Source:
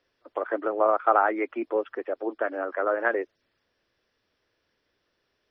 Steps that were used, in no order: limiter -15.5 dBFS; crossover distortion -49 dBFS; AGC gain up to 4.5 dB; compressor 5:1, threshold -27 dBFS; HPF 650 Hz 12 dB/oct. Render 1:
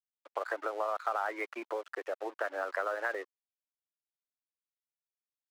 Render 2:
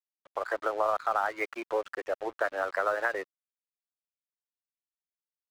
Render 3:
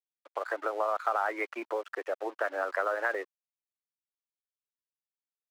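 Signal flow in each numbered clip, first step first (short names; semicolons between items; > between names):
limiter > AGC > compressor > crossover distortion > HPF; HPF > compressor > crossover distortion > AGC > limiter; limiter > compressor > AGC > crossover distortion > HPF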